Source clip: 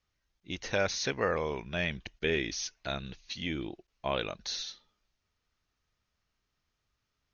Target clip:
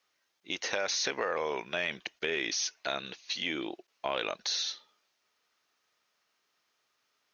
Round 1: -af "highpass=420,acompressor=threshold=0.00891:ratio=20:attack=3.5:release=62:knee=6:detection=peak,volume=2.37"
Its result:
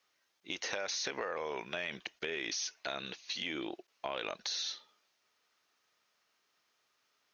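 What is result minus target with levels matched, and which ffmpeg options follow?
compression: peak gain reduction +6 dB
-af "highpass=420,acompressor=threshold=0.0188:ratio=20:attack=3.5:release=62:knee=6:detection=peak,volume=2.37"

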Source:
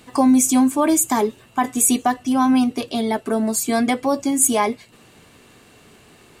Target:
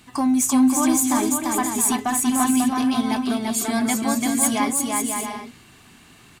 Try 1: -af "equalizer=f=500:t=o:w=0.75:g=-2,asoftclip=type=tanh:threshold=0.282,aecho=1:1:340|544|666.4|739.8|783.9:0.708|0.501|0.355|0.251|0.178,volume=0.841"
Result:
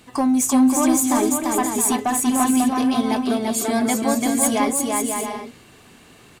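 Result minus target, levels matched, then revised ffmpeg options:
500 Hz band +5.0 dB
-af "equalizer=f=500:t=o:w=0.75:g=-12.5,asoftclip=type=tanh:threshold=0.282,aecho=1:1:340|544|666.4|739.8|783.9:0.708|0.501|0.355|0.251|0.178,volume=0.841"

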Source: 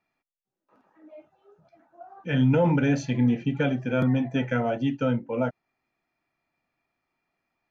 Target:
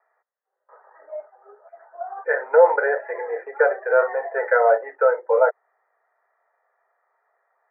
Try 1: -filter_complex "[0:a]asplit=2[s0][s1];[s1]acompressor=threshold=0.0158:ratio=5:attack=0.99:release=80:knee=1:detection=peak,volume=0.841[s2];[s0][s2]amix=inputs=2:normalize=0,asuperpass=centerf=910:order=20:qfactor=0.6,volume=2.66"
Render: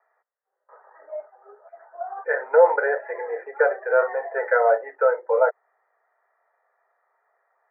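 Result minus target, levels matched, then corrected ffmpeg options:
compression: peak gain reduction +8 dB
-filter_complex "[0:a]asplit=2[s0][s1];[s1]acompressor=threshold=0.0501:ratio=5:attack=0.99:release=80:knee=1:detection=peak,volume=0.841[s2];[s0][s2]amix=inputs=2:normalize=0,asuperpass=centerf=910:order=20:qfactor=0.6,volume=2.66"

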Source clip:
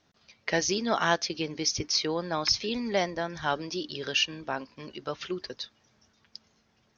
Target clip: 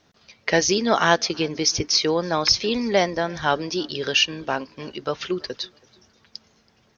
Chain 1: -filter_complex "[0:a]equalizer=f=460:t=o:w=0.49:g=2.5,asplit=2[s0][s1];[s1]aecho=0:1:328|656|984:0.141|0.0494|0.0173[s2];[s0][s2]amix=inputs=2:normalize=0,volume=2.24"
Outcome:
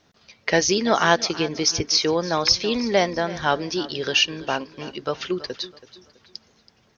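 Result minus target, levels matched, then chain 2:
echo-to-direct +10 dB
-filter_complex "[0:a]equalizer=f=460:t=o:w=0.49:g=2.5,asplit=2[s0][s1];[s1]aecho=0:1:328|656:0.0447|0.0156[s2];[s0][s2]amix=inputs=2:normalize=0,volume=2.24"

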